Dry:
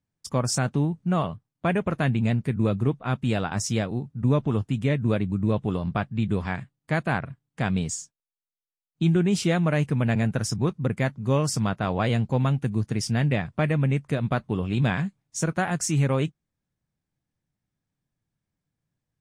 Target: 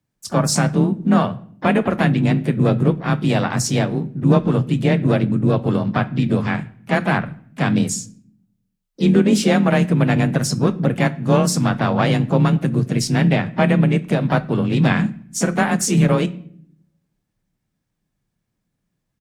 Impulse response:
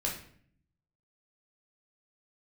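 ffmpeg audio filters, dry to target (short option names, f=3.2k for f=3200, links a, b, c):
-filter_complex "[0:a]asplit=2[a][b];[1:a]atrim=start_sample=2205[c];[b][c]afir=irnorm=-1:irlink=0,volume=-15dB[d];[a][d]amix=inputs=2:normalize=0,asplit=4[e][f][g][h];[f]asetrate=35002,aresample=44100,atempo=1.25992,volume=-12dB[i];[g]asetrate=55563,aresample=44100,atempo=0.793701,volume=-11dB[j];[h]asetrate=66075,aresample=44100,atempo=0.66742,volume=-17dB[k];[e][i][j][k]amix=inputs=4:normalize=0,afreqshift=24,volume=5dB"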